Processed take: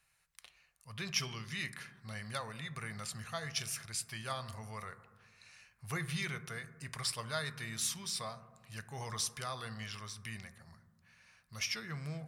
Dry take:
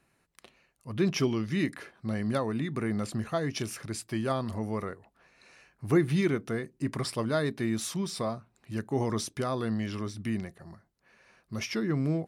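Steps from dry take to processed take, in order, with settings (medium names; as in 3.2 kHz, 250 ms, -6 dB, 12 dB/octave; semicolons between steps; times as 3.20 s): amplifier tone stack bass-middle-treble 10-0-10; on a send: reverberation RT60 1.4 s, pre-delay 3 ms, DRR 11.5 dB; on the sum: trim +2 dB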